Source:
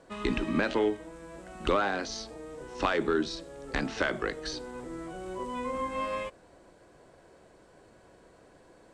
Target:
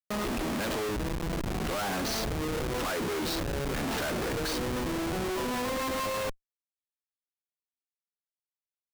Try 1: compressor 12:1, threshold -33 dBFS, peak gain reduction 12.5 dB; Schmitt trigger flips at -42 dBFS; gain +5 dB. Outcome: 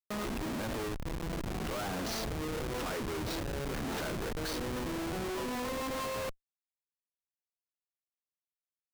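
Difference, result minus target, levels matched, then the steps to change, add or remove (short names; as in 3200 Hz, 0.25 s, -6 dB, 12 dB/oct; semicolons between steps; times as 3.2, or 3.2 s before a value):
compressor: peak gain reduction +7 dB
change: compressor 12:1, threshold -25.5 dBFS, peak gain reduction 5.5 dB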